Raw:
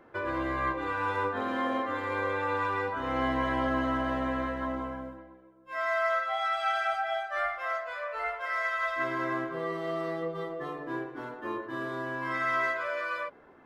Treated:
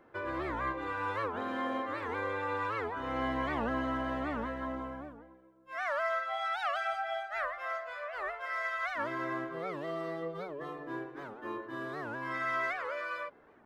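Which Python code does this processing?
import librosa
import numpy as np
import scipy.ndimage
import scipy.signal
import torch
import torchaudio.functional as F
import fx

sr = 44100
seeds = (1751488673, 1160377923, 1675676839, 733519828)

y = fx.record_warp(x, sr, rpm=78.0, depth_cents=250.0)
y = y * librosa.db_to_amplitude(-4.5)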